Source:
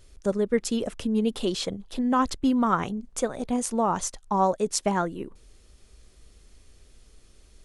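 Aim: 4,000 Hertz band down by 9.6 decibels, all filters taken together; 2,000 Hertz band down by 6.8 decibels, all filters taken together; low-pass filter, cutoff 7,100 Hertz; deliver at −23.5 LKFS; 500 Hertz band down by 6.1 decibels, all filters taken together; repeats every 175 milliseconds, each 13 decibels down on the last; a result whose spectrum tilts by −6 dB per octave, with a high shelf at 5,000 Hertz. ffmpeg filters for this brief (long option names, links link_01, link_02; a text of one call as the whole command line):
ffmpeg -i in.wav -af "lowpass=7100,equalizer=frequency=500:width_type=o:gain=-7,equalizer=frequency=2000:width_type=o:gain=-7,equalizer=frequency=4000:width_type=o:gain=-7.5,highshelf=frequency=5000:gain=-5,aecho=1:1:175|350|525:0.224|0.0493|0.0108,volume=6dB" out.wav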